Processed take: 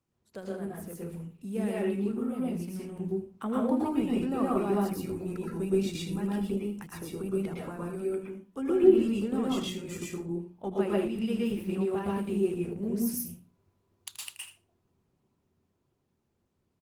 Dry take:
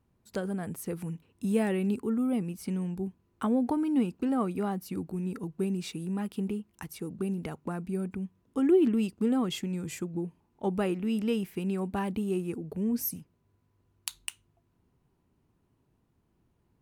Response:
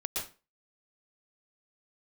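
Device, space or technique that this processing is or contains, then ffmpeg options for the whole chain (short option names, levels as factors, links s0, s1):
far-field microphone of a smart speaker: -filter_complex "[0:a]bandreject=f=60:t=h:w=6,bandreject=f=120:t=h:w=6,bandreject=f=180:t=h:w=6,bandreject=f=240:t=h:w=6,bandreject=f=300:t=h:w=6,bandreject=f=360:t=h:w=6,asplit=3[s0][s1][s2];[s0]afade=t=out:st=7.76:d=0.02[s3];[s1]highpass=250,afade=t=in:st=7.76:d=0.02,afade=t=out:st=8.66:d=0.02[s4];[s2]afade=t=in:st=8.66:d=0.02[s5];[s3][s4][s5]amix=inputs=3:normalize=0,aecho=1:1:79:0.237[s6];[1:a]atrim=start_sample=2205[s7];[s6][s7]afir=irnorm=-1:irlink=0,highpass=85,dynaudnorm=f=550:g=11:m=2,volume=0.447" -ar 48000 -c:a libopus -b:a 16k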